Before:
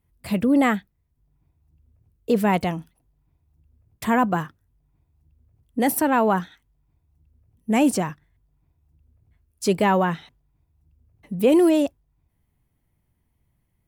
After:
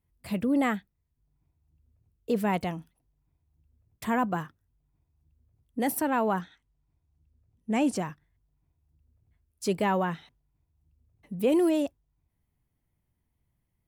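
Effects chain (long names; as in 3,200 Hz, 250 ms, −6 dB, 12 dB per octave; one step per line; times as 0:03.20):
0:06.41–0:07.96: low-pass filter 8,200 Hz 12 dB per octave
level −7 dB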